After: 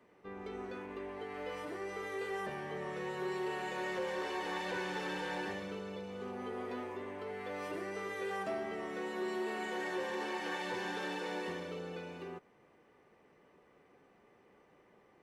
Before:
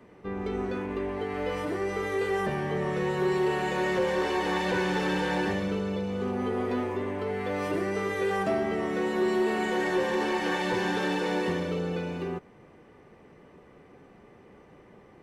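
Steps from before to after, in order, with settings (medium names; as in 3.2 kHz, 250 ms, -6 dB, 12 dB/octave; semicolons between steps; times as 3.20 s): bass shelf 250 Hz -11 dB; trim -8.5 dB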